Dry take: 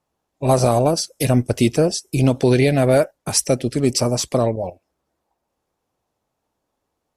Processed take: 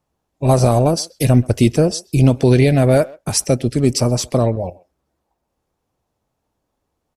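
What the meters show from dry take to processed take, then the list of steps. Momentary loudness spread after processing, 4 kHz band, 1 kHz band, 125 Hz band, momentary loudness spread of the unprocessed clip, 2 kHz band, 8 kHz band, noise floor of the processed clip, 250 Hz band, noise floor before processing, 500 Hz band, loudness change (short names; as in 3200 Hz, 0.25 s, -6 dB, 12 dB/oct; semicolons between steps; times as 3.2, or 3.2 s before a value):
7 LU, 0.0 dB, +0.5 dB, +5.5 dB, 5 LU, 0.0 dB, 0.0 dB, -75 dBFS, +3.0 dB, -77 dBFS, +1.0 dB, +2.5 dB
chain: low shelf 190 Hz +8 dB; speakerphone echo 0.13 s, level -22 dB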